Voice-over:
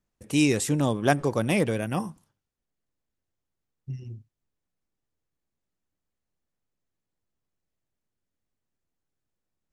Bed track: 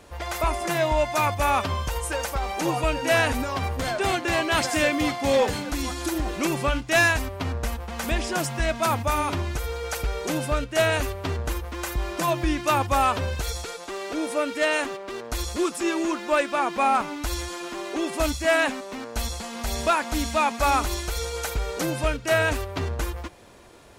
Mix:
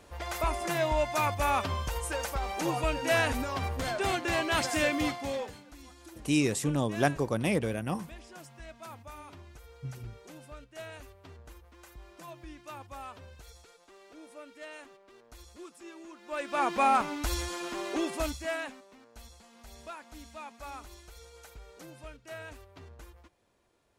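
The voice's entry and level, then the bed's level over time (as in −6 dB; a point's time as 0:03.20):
5.95 s, −4.5 dB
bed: 0:05.07 −5.5 dB
0:05.64 −22.5 dB
0:16.15 −22.5 dB
0:16.63 −3 dB
0:17.97 −3 dB
0:18.99 −22 dB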